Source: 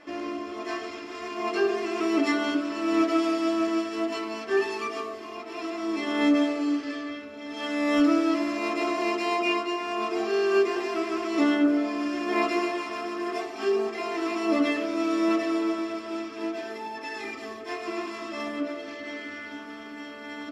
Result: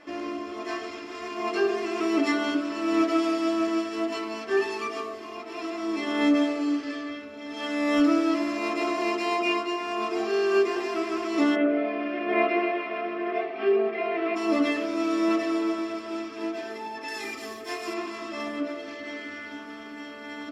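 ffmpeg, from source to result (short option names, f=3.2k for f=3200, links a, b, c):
-filter_complex "[0:a]asplit=3[a][b][c];[a]afade=t=out:st=11.55:d=0.02[d];[b]highpass=f=150:w=0.5412,highpass=f=150:w=1.3066,equalizer=f=160:t=q:w=4:g=7,equalizer=f=290:t=q:w=4:g=-4,equalizer=f=430:t=q:w=4:g=4,equalizer=f=640:t=q:w=4:g=8,equalizer=f=920:t=q:w=4:g=-8,equalizer=f=2.2k:t=q:w=4:g=5,lowpass=f=3.1k:w=0.5412,lowpass=f=3.1k:w=1.3066,afade=t=in:st=11.55:d=0.02,afade=t=out:st=14.35:d=0.02[e];[c]afade=t=in:st=14.35:d=0.02[f];[d][e][f]amix=inputs=3:normalize=0,asettb=1/sr,asplit=3[g][h][i];[g]atrim=end=17.084[j];[h]atrim=start=17.08:end=17.94,asetpts=PTS-STARTPTS,afade=t=in:d=0.004:c=qsin,afade=t=out:st=0.856:d=0.004:c=qsin,aemphasis=mode=production:type=50fm[k];[i]atrim=start=17.936[l];[j][k]acrossfade=d=0.004:c1=hsin:c2=qsin[m];[m][l]acrossfade=d=0.004:c1=qsin:c2=hsin"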